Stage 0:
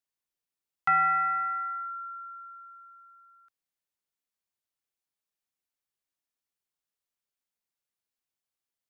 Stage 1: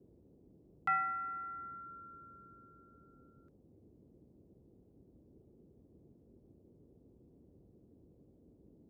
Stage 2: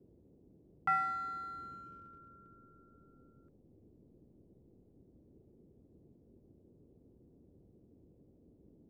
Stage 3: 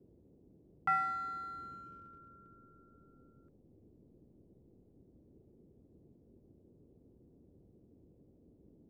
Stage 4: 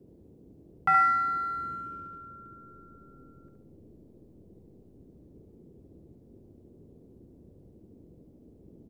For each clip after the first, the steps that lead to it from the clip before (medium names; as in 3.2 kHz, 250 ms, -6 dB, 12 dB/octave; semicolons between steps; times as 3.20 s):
reverb removal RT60 0.79 s; band noise 44–400 Hz -55 dBFS; trim -8 dB
treble shelf 2.4 kHz -12 dB; in parallel at -4.5 dB: hysteresis with a dead band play -45 dBFS
no audible change
feedback delay 70 ms, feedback 37%, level -5 dB; trim +7.5 dB